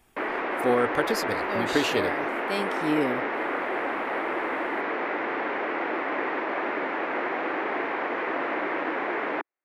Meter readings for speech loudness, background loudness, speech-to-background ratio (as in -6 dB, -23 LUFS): -28.0 LUFS, -28.5 LUFS, 0.5 dB